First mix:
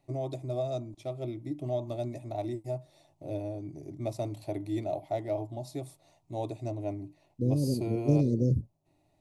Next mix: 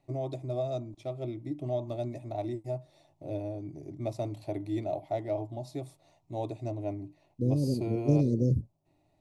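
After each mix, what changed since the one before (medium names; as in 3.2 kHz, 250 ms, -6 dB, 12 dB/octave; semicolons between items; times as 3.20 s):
first voice: add treble shelf 7.7 kHz -9 dB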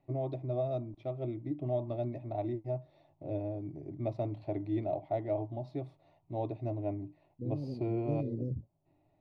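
second voice -10.0 dB; master: add distance through air 340 m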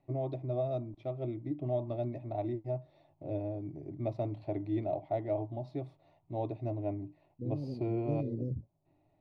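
no change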